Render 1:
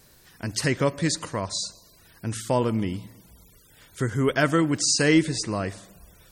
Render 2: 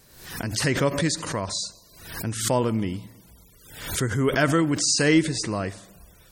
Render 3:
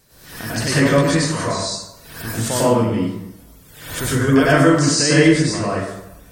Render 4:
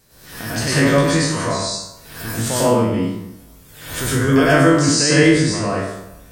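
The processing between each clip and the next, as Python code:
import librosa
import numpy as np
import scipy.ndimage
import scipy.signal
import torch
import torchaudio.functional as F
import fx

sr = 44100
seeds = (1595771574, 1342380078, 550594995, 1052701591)

y1 = fx.pre_swell(x, sr, db_per_s=75.0)
y2 = fx.rev_plate(y1, sr, seeds[0], rt60_s=0.83, hf_ratio=0.55, predelay_ms=85, drr_db=-8.5)
y2 = F.gain(torch.from_numpy(y2), -2.0).numpy()
y3 = fx.spec_trails(y2, sr, decay_s=0.51)
y3 = F.gain(torch.from_numpy(y3), -1.0).numpy()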